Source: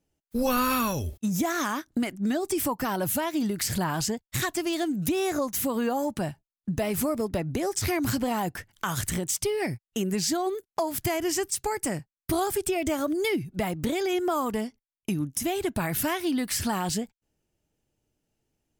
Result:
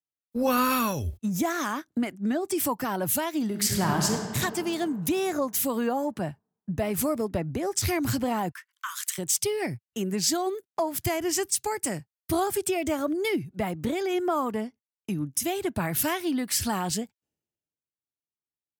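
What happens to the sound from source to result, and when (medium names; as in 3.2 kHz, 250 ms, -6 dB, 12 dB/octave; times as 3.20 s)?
3.43–4.27 s: reverb throw, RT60 3 s, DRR 1.5 dB
8.51–9.18 s: steep high-pass 1 kHz 96 dB/octave
whole clip: high-pass 77 Hz; three bands expanded up and down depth 70%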